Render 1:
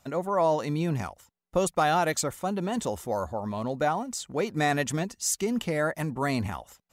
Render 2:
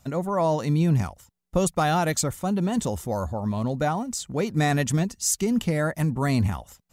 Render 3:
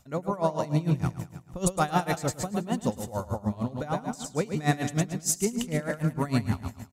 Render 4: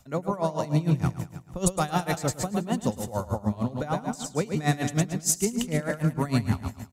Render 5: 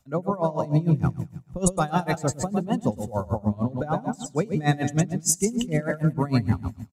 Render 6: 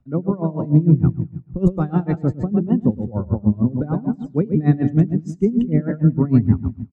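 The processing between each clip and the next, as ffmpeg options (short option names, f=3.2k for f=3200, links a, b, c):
-af "bass=f=250:g=10,treble=f=4k:g=4"
-af "aecho=1:1:108|216|324|432|540|648|756:0.501|0.271|0.146|0.0789|0.0426|0.023|0.0124,aeval=exprs='val(0)*pow(10,-19*(0.5-0.5*cos(2*PI*6.6*n/s))/20)':c=same"
-filter_complex "[0:a]acrossover=split=170|3000[a][b][c];[b]acompressor=threshold=-25dB:ratio=6[d];[a][d][c]amix=inputs=3:normalize=0,volume=2.5dB"
-filter_complex "[0:a]asplit=2[a][b];[b]adelay=1633,volume=-27dB,highshelf=f=4k:g=-36.7[c];[a][c]amix=inputs=2:normalize=0,afftdn=nr=12:nf=-34,volume=2.5dB"
-af "lowpass=1.8k,lowshelf=f=470:t=q:w=1.5:g=10,volume=-3.5dB"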